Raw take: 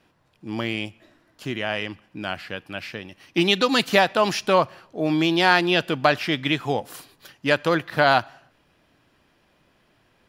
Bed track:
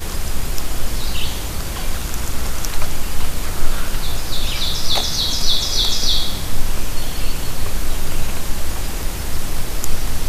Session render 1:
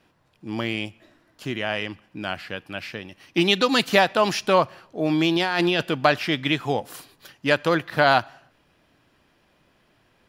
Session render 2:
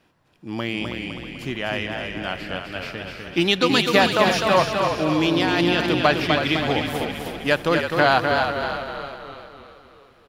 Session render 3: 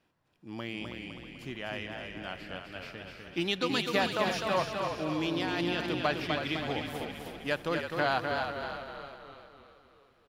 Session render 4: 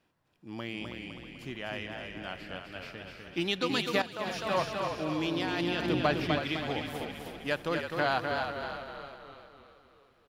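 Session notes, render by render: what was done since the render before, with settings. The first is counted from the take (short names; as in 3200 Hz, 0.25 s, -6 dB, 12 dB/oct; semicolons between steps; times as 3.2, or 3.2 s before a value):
5.36–5.83 negative-ratio compressor -22 dBFS
on a send: frequency-shifting echo 0.32 s, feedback 50%, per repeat -43 Hz, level -8 dB; on the sum: warbling echo 0.253 s, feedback 46%, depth 65 cents, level -5 dB
gain -11.5 dB
4.02–4.58 fade in, from -14.5 dB; 5.82–6.4 low shelf 490 Hz +6 dB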